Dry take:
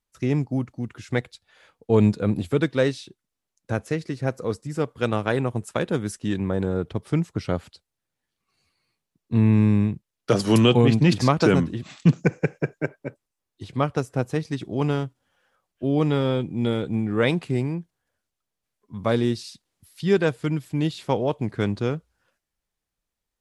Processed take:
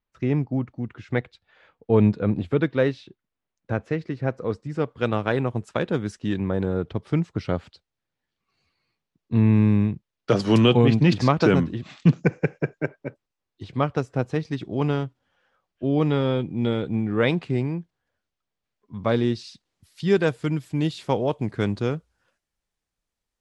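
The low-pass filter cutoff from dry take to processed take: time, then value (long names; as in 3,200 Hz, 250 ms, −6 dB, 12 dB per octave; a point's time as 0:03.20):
0:04.36 2,900 Hz
0:05.25 4,800 Hz
0:19.32 4,800 Hz
0:20.30 9,900 Hz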